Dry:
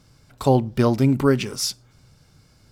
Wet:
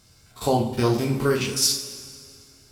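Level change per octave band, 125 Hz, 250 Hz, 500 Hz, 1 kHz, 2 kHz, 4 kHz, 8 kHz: -4.5, -5.0, -2.0, -1.0, +0.5, +4.5, +6.0 dB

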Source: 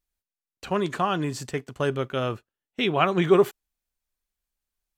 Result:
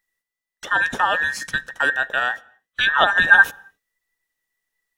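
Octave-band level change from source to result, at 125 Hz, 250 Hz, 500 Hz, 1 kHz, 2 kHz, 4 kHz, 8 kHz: -13.0, -12.5, -7.0, +6.0, +19.0, +8.0, +5.0 dB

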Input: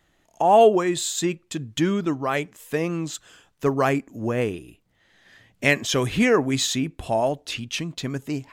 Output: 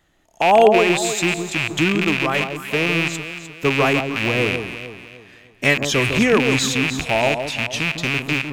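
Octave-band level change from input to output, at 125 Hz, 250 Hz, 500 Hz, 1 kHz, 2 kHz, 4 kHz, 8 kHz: +4.0, +3.0, +3.0, +3.0, +9.5, +6.5, +2.5 dB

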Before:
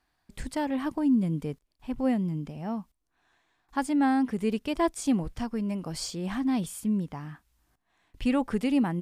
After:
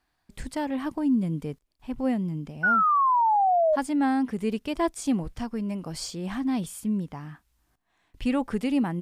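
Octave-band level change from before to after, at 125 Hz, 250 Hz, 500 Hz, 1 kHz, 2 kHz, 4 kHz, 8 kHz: 0.0, 0.0, +4.5, +10.5, +7.5, 0.0, 0.0 dB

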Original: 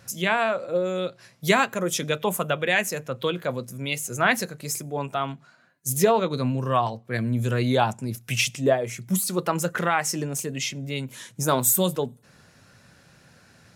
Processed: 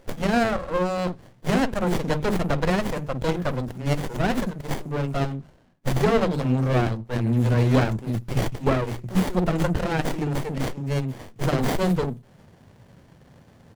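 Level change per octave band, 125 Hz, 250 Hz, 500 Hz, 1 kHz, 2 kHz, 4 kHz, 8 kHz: +5.5, +4.5, -0.5, -2.5, -4.5, -5.0, -13.5 dB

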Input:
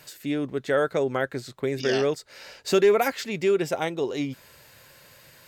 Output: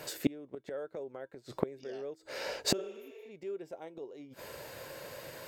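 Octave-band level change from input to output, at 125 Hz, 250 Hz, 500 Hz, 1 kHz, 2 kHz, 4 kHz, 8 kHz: -12.0, -10.5, -16.0, -16.0, -15.0, -5.5, -3.0 dB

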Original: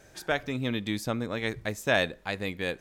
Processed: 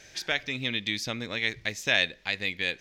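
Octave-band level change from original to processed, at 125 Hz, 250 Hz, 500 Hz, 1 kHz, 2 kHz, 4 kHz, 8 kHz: -5.5, -5.5, -6.5, -6.0, +3.5, +7.0, +3.5 dB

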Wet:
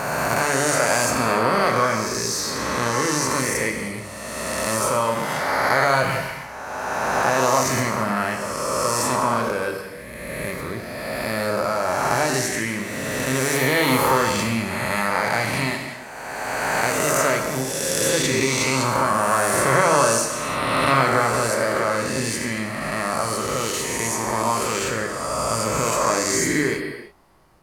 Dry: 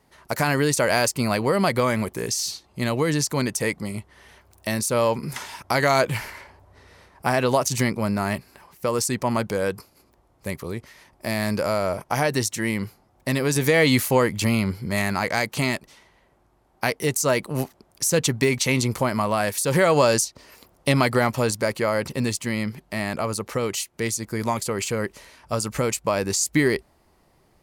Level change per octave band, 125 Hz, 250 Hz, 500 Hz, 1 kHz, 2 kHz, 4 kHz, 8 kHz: -2.0, -1.0, +1.0, +6.5, +4.5, +2.5, +3.5 dB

